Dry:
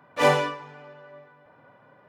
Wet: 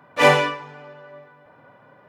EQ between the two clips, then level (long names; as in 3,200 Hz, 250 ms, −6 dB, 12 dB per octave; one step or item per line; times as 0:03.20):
dynamic equaliser 2,300 Hz, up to +5 dB, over −41 dBFS, Q 1.4
+4.0 dB